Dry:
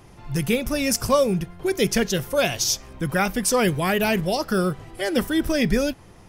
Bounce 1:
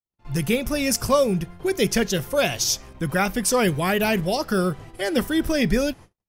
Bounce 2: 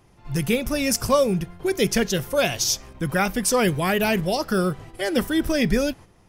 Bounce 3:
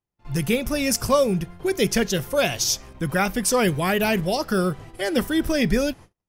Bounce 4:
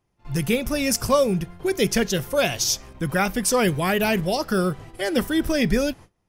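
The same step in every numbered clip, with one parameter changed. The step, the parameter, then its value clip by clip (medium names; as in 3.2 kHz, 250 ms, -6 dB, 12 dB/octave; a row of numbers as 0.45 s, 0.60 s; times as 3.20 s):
gate, range: -58 dB, -8 dB, -41 dB, -25 dB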